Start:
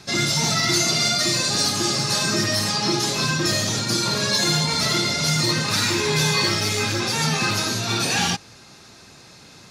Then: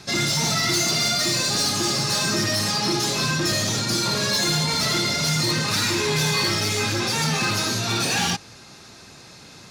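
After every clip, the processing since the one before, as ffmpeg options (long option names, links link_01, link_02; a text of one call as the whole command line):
ffmpeg -i in.wav -af "asoftclip=type=tanh:threshold=-18dB,volume=1.5dB" out.wav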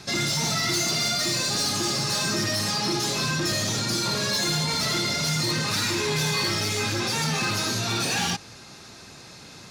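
ffmpeg -i in.wav -af "alimiter=limit=-20dB:level=0:latency=1" out.wav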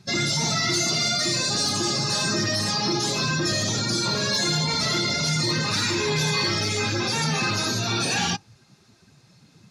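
ffmpeg -i in.wav -af "afftdn=noise_reduction=17:noise_floor=-35,volume=2dB" out.wav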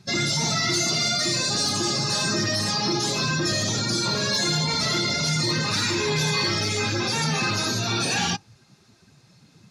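ffmpeg -i in.wav -af anull out.wav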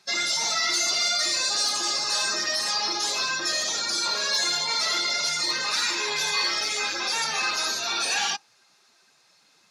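ffmpeg -i in.wav -af "highpass=690" out.wav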